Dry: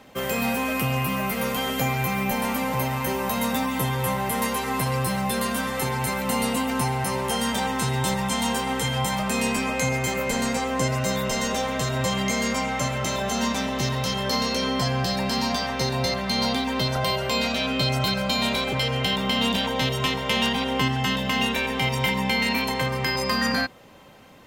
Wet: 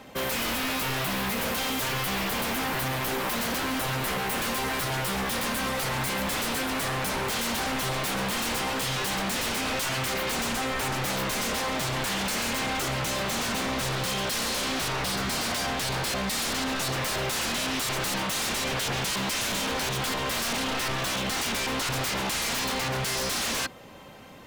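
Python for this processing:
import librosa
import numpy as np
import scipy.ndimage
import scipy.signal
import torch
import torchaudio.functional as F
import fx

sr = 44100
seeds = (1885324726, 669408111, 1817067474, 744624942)

y = 10.0 ** (-26.5 / 20.0) * (np.abs((x / 10.0 ** (-26.5 / 20.0) + 3.0) % 4.0 - 2.0) - 1.0)
y = F.gain(torch.from_numpy(y), 2.5).numpy()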